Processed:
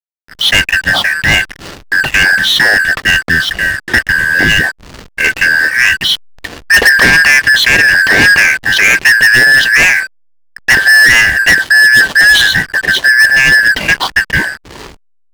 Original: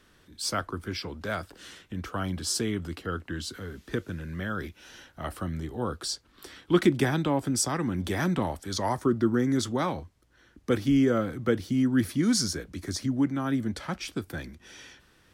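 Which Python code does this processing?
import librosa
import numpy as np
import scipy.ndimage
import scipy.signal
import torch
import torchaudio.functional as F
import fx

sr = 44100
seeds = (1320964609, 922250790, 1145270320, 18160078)

y = fx.band_shuffle(x, sr, order='2143')
y = scipy.signal.sosfilt(scipy.signal.butter(4, 4100.0, 'lowpass', fs=sr, output='sos'), y)
y = fx.leveller(y, sr, passes=5)
y = fx.backlash(y, sr, play_db=-35.5)
y = y * librosa.db_to_amplitude(7.5)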